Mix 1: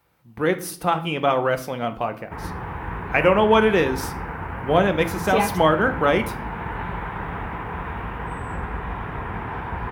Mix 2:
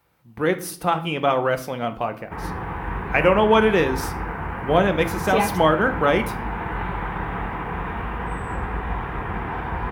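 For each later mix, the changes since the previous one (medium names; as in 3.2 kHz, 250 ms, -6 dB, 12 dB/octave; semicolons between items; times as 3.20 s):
background: send on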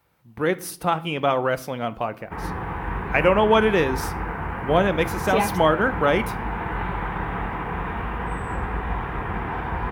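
speech: send -6.0 dB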